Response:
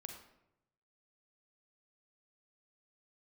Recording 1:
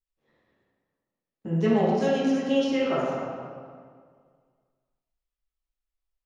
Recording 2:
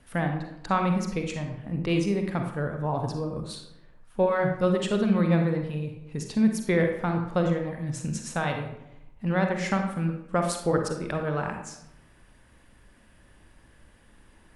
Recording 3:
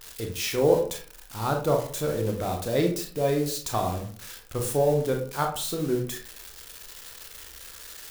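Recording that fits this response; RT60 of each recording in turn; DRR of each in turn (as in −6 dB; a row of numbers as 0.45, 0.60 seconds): 2; 1.9, 0.85, 0.50 seconds; −8.0, 3.5, 2.0 decibels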